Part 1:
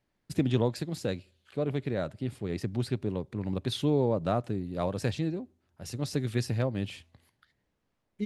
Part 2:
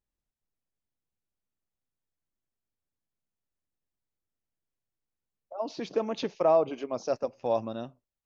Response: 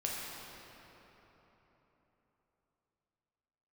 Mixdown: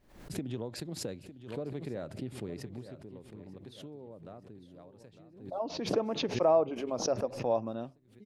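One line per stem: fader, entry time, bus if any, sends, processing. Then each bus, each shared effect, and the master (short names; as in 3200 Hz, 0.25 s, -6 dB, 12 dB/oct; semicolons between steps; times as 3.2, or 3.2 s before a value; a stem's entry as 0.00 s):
2.45 s -7.5 dB -> 2.98 s -17.5 dB, 0.00 s, no send, echo send -13.5 dB, gate -59 dBFS, range -9 dB; bell 400 Hz +6 dB 2.7 oct; compressor 5:1, threshold -27 dBFS, peak gain reduction 10.5 dB; auto duck -12 dB, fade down 1.15 s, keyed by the second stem
-1.5 dB, 0.00 s, no send, no echo send, high shelf 2200 Hz -10 dB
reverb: off
echo: feedback echo 0.904 s, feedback 36%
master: backwards sustainer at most 94 dB/s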